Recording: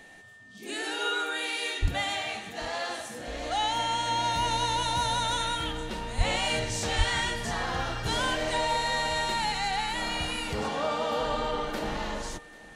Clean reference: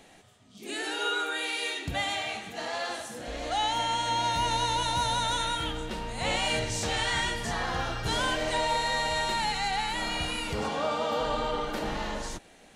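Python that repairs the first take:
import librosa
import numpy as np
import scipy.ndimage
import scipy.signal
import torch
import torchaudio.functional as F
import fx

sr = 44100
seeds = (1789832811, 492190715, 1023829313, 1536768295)

y = fx.notch(x, sr, hz=1800.0, q=30.0)
y = fx.highpass(y, sr, hz=140.0, slope=24, at=(1.81, 1.93), fade=0.02)
y = fx.highpass(y, sr, hz=140.0, slope=24, at=(6.17, 6.29), fade=0.02)
y = fx.highpass(y, sr, hz=140.0, slope=24, at=(6.97, 7.09), fade=0.02)
y = fx.fix_echo_inverse(y, sr, delay_ms=791, level_db=-21.0)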